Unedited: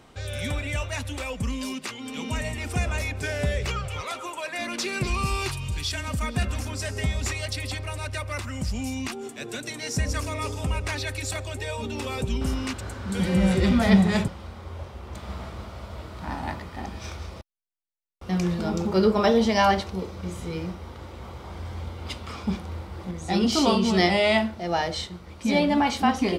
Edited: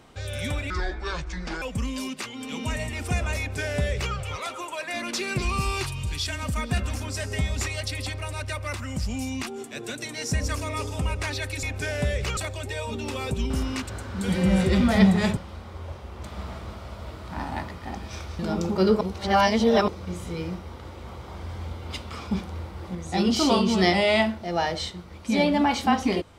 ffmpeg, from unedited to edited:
ffmpeg -i in.wav -filter_complex "[0:a]asplit=8[link_01][link_02][link_03][link_04][link_05][link_06][link_07][link_08];[link_01]atrim=end=0.704[link_09];[link_02]atrim=start=0.7:end=1.27,asetpts=PTS-STARTPTS,asetrate=27342,aresample=44100[link_10];[link_03]atrim=start=1.266:end=11.282[link_11];[link_04]atrim=start=3.038:end=3.782[link_12];[link_05]atrim=start=11.278:end=17.302[link_13];[link_06]atrim=start=18.548:end=19.172[link_14];[link_07]atrim=start=19.168:end=20.042,asetpts=PTS-STARTPTS,areverse[link_15];[link_08]atrim=start=20.038[link_16];[link_09][link_10]acrossfade=duration=0.004:curve1=hsin:curve2=hsin[link_17];[link_17][link_11]acrossfade=duration=0.004:curve1=hsin:curve2=hsin[link_18];[link_18][link_12]acrossfade=duration=0.004:curve1=hsin:curve2=hsin[link_19];[link_19][link_13]acrossfade=duration=0.004:curve1=hsin:curve2=hsin[link_20];[link_20][link_14]acrossfade=duration=0.004:curve1=hsin:curve2=hsin[link_21];[link_21][link_15]acrossfade=duration=0.004:curve1=hsin:curve2=hsin[link_22];[link_22][link_16]acrossfade=duration=0.004:curve1=hsin:curve2=hsin" out.wav

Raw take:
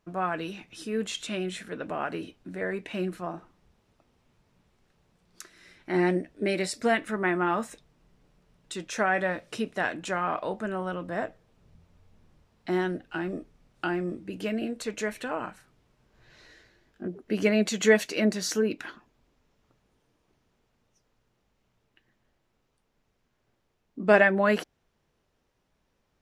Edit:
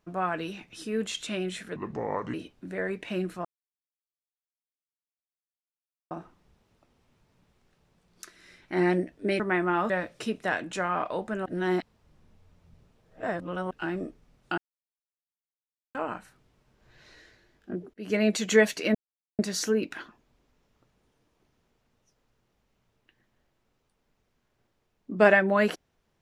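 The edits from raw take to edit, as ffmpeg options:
ffmpeg -i in.wav -filter_complex "[0:a]asplit=12[link_01][link_02][link_03][link_04][link_05][link_06][link_07][link_08][link_09][link_10][link_11][link_12];[link_01]atrim=end=1.764[link_13];[link_02]atrim=start=1.76:end=2.17,asetpts=PTS-STARTPTS,asetrate=31311,aresample=44100,atrim=end_sample=25466,asetpts=PTS-STARTPTS[link_14];[link_03]atrim=start=2.166:end=3.28,asetpts=PTS-STARTPTS,afade=type=out:start_time=1.11:duration=0.004:curve=hsin,apad=pad_dur=2.66[link_15];[link_04]atrim=start=3.28:end=6.572,asetpts=PTS-STARTPTS,afade=type=in:duration=0.004:curve=hsin[link_16];[link_05]atrim=start=7.128:end=7.632[link_17];[link_06]atrim=start=9.218:end=10.782[link_18];[link_07]atrim=start=10.778:end=13.032,asetpts=PTS-STARTPTS,areverse[link_19];[link_08]atrim=start=13.028:end=13.9,asetpts=PTS-STARTPTS,afade=type=out:start_time=0.868:duration=0.004:curve=hsin[link_20];[link_09]atrim=start=13.9:end=15.27,asetpts=PTS-STARTPTS,volume=0[link_21];[link_10]atrim=start=15.27:end=17.26,asetpts=PTS-STARTPTS,afade=type=in:duration=0.004:curve=hsin,afade=type=out:start_time=1.986:duration=0.004:curve=hsin[link_22];[link_11]atrim=start=17.26:end=18.27,asetpts=PTS-STARTPTS,afade=type=in:duration=0.3,afade=type=out:start_time=1.006:duration=0.004:curve=hsin,apad=pad_dur=0.44[link_23];[link_12]atrim=start=18.27,asetpts=PTS-STARTPTS,afade=type=in:duration=0.004:curve=hsin[link_24];[link_13][link_14]acrossfade=duration=0.004:curve1=hsin:curve2=hsin[link_25];[link_15][link_16]concat=n=2:v=0:a=1[link_26];[link_25][link_26]acrossfade=duration=0.004:curve1=hsin:curve2=hsin[link_27];[link_27][link_17]acrossfade=duration=0.004:curve1=hsin:curve2=hsin[link_28];[link_28][link_18]acrossfade=duration=0.004:curve1=hsin:curve2=hsin[link_29];[link_29][link_19]acrossfade=duration=0.004:curve1=hsin:curve2=hsin[link_30];[link_20][link_21][link_22][link_23][link_24]concat=n=5:v=0:a=1[link_31];[link_30][link_31]acrossfade=duration=0.004:curve1=hsin:curve2=hsin" out.wav

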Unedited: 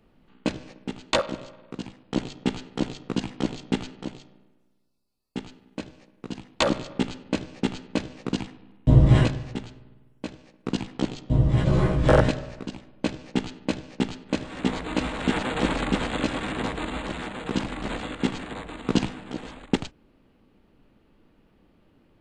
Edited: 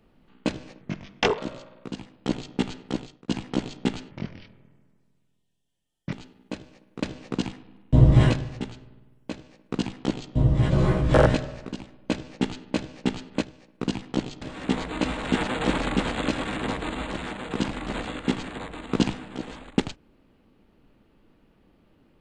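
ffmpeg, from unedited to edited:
ffmpeg -i in.wav -filter_complex "[0:a]asplit=9[link_01][link_02][link_03][link_04][link_05][link_06][link_07][link_08][link_09];[link_01]atrim=end=0.814[link_10];[link_02]atrim=start=0.81:end=1.25,asetpts=PTS-STARTPTS,asetrate=33957,aresample=44100[link_11];[link_03]atrim=start=1.246:end=3.15,asetpts=PTS-STARTPTS,afade=type=out:start_time=1.454:duration=0.45[link_12];[link_04]atrim=start=3.15:end=3.984,asetpts=PTS-STARTPTS,afade=type=in:duration=0.004:curve=hsin[link_13];[link_05]atrim=start=3.98:end=5.39,asetpts=PTS-STARTPTS,asetrate=30870,aresample=44100[link_14];[link_06]atrim=start=5.386:end=6.292[link_15];[link_07]atrim=start=7.968:end=14.372[link_16];[link_08]atrim=start=10.278:end=11.272[link_17];[link_09]atrim=start=14.368[link_18];[link_10][link_11]acrossfade=duration=0.004:curve1=hsin:curve2=hsin[link_19];[link_12][link_13]concat=n=2:v=0:a=1[link_20];[link_19][link_20]acrossfade=duration=0.004:curve1=hsin:curve2=hsin[link_21];[link_21][link_14]acrossfade=duration=0.004:curve1=hsin:curve2=hsin[link_22];[link_22][link_15]acrossfade=duration=0.004:curve1=hsin:curve2=hsin[link_23];[link_23][link_16]acrossfade=duration=0.004:curve1=hsin:curve2=hsin[link_24];[link_24][link_17]acrossfade=duration=0.004:curve1=hsin:curve2=hsin[link_25];[link_25][link_18]acrossfade=duration=0.004:curve1=hsin:curve2=hsin" out.wav

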